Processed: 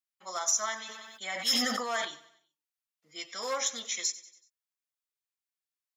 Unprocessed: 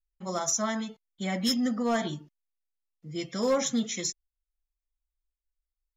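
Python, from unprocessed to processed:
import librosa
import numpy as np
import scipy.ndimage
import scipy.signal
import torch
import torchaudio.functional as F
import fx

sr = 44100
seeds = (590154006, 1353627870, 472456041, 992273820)

y = scipy.signal.sosfilt(scipy.signal.butter(2, 960.0, 'highpass', fs=sr, output='sos'), x)
y = fx.echo_feedback(y, sr, ms=94, feedback_pct=48, wet_db=-17.0)
y = fx.sustainer(y, sr, db_per_s=30.0, at=(0.77, 2.05))
y = y * librosa.db_to_amplitude(1.0)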